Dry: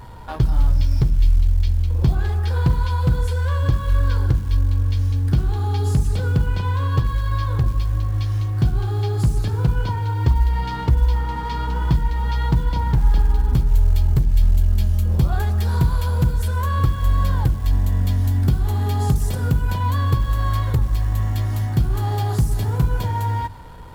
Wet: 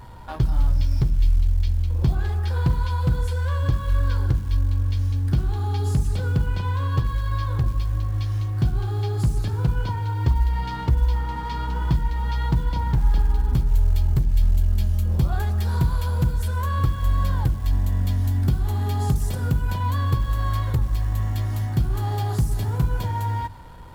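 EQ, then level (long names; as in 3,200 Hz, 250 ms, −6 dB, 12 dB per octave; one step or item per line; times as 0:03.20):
notch filter 450 Hz, Q 14
−3.0 dB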